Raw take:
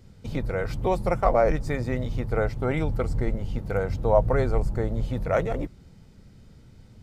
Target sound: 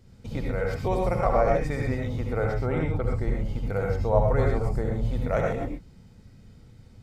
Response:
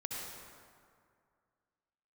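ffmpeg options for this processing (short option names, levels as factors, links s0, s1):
-filter_complex "[0:a]asettb=1/sr,asplit=3[s0][s1][s2];[s0]atrim=end=2.664[s3];[s1]atrim=start=2.66:end=3.15,asetpts=PTS-STARTPTS,afade=t=in:d=0.004:c=qsin,afade=t=out:st=0.486:d=0.004:c=qsin,highshelf=f=3400:g=-9[s4];[s2]atrim=start=3.146[s5];[s3][s4]acrossfade=d=0.004:c1=hsin:c2=qsin[s6];[s6][s5]acrossfade=d=0.004:c1=qsin:c2=hsin[s7];[1:a]atrim=start_sample=2205,atrim=end_sample=6174[s8];[s7][s8]afir=irnorm=-1:irlink=0"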